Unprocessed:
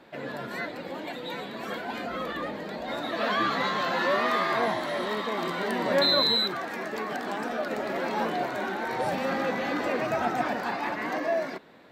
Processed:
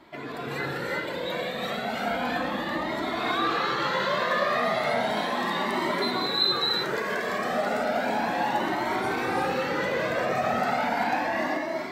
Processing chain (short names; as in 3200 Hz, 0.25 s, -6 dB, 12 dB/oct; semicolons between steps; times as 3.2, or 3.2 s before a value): limiter -23 dBFS, peak gain reduction 11 dB; non-linear reverb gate 0.41 s rising, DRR -2.5 dB; cascading flanger rising 0.34 Hz; gain +5.5 dB